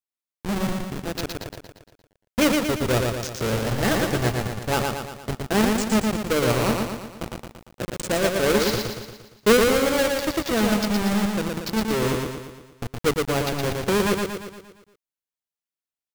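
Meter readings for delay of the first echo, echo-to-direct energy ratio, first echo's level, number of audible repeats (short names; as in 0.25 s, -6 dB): 0.116 s, -2.0 dB, -3.5 dB, 6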